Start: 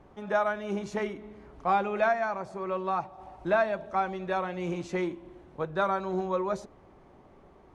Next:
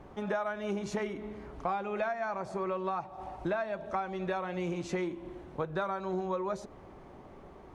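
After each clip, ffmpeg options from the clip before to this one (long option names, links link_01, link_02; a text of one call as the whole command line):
ffmpeg -i in.wav -af "acompressor=threshold=-35dB:ratio=6,volume=4.5dB" out.wav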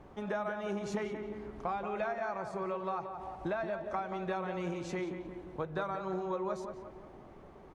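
ffmpeg -i in.wav -filter_complex "[0:a]asplit=2[link_01][link_02];[link_02]adelay=178,lowpass=frequency=2100:poles=1,volume=-7dB,asplit=2[link_03][link_04];[link_04]adelay=178,lowpass=frequency=2100:poles=1,volume=0.52,asplit=2[link_05][link_06];[link_06]adelay=178,lowpass=frequency=2100:poles=1,volume=0.52,asplit=2[link_07][link_08];[link_08]adelay=178,lowpass=frequency=2100:poles=1,volume=0.52,asplit=2[link_09][link_10];[link_10]adelay=178,lowpass=frequency=2100:poles=1,volume=0.52,asplit=2[link_11][link_12];[link_12]adelay=178,lowpass=frequency=2100:poles=1,volume=0.52[link_13];[link_01][link_03][link_05][link_07][link_09][link_11][link_13]amix=inputs=7:normalize=0,volume=-3dB" out.wav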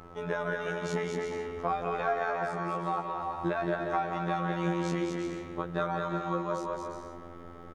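ffmpeg -i in.wav -af "afftfilt=real='hypot(re,im)*cos(PI*b)':imag='0':win_size=2048:overlap=0.75,aeval=exprs='val(0)+0.001*sin(2*PI*1300*n/s)':channel_layout=same,aecho=1:1:220|352|431.2|478.7|507.2:0.631|0.398|0.251|0.158|0.1,volume=7.5dB" out.wav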